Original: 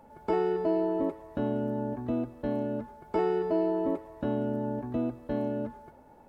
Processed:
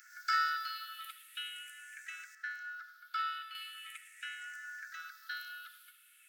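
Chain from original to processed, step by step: drifting ripple filter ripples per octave 0.55, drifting -0.42 Hz, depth 15 dB; Chebyshev high-pass 1.3 kHz, order 10; treble shelf 3.1 kHz +10 dB, from 2.35 s -3 dB, from 3.55 s +7.5 dB; trim +7 dB

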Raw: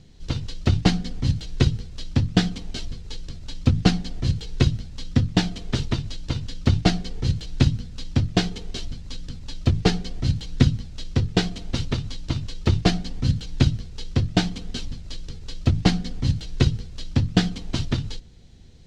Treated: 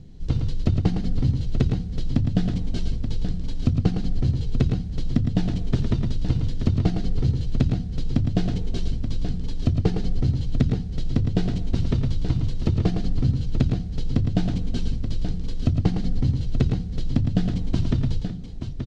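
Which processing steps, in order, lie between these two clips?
tilt shelf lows +7 dB, about 660 Hz; compression 6:1, threshold -17 dBFS, peak gain reduction 13 dB; on a send: multi-tap echo 88/110/372/879 ms -18/-6.5/-14.5/-8.5 dB

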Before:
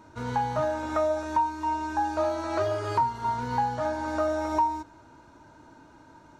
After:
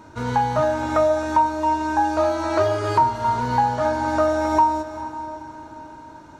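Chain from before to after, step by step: echo that smears into a reverb 457 ms, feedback 43%, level -13 dB; trim +7 dB

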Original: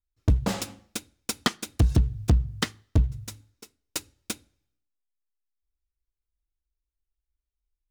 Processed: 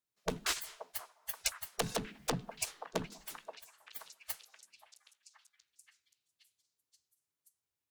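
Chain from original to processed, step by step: spectral gate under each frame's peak -20 dB weak; on a send: repeats whose band climbs or falls 528 ms, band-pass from 790 Hz, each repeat 0.7 oct, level -7.5 dB; on the sum: trim +3 dB

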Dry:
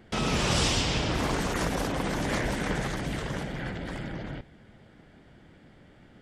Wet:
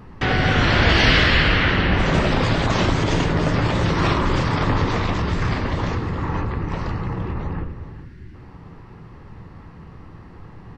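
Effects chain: spectral selection erased 4.58–4.81 s, 690–2400 Hz; speed mistake 78 rpm record played at 45 rpm; on a send at -7 dB: reverberation RT60 0.75 s, pre-delay 11 ms; on the sum: dynamic bell 2 kHz, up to +4 dB, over -43 dBFS, Q 1; in parallel at -2 dB: compression, threshold -40 dBFS, peak gain reduction 20 dB; on the sum: delay 411 ms -15 dB; trim +6.5 dB

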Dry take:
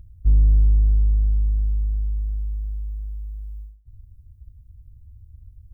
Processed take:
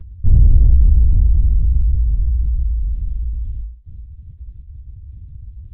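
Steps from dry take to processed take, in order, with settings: in parallel at +2 dB: compression, threshold -24 dBFS, peak gain reduction 11.5 dB; on the sum: LPC vocoder at 8 kHz whisper; trim +3 dB

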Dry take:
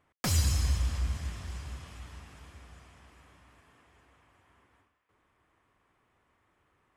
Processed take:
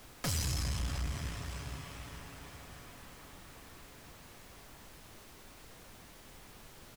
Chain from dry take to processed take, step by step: comb 7.1 ms, depth 51%; in parallel at +1 dB: peak limiter -28.5 dBFS, peak gain reduction 11.5 dB; on the sum: valve stage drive 26 dB, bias 0.55; added noise pink -51 dBFS; trim -3 dB

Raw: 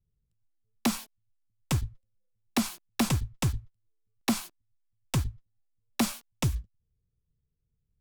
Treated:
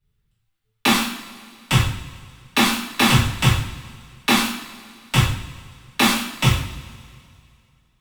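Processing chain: high-order bell 2 kHz +9 dB 2.3 oct; two-slope reverb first 0.54 s, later 2.4 s, from -19 dB, DRR -9 dB

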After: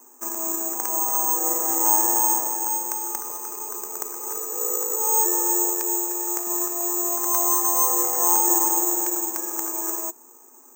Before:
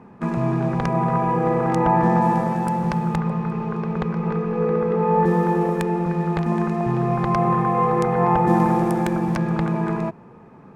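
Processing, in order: rippled Chebyshev high-pass 250 Hz, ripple 6 dB; careless resampling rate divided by 6×, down filtered, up zero stuff; trim -6.5 dB

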